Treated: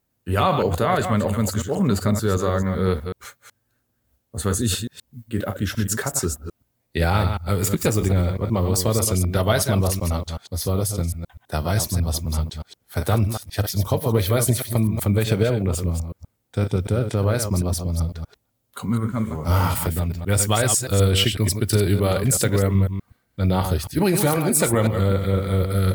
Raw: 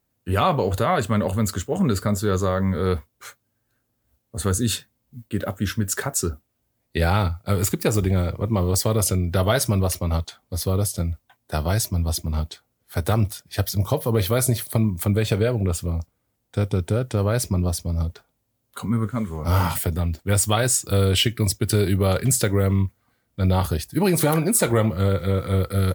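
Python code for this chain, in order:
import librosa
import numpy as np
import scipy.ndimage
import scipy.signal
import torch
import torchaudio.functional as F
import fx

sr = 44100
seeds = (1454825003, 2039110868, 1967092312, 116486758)

y = fx.reverse_delay(x, sr, ms=125, wet_db=-7.0)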